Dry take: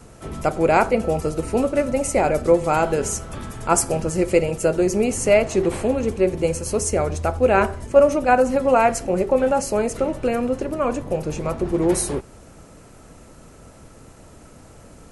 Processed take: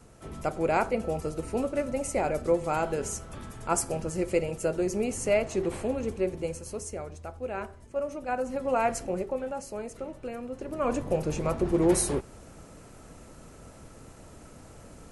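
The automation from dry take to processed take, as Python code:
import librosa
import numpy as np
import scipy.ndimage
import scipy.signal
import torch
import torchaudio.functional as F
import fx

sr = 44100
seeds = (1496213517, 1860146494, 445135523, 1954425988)

y = fx.gain(x, sr, db=fx.line((6.17, -9.0), (7.18, -18.0), (8.01, -18.0), (9.01, -7.5), (9.45, -15.5), (10.49, -15.5), (10.95, -3.5)))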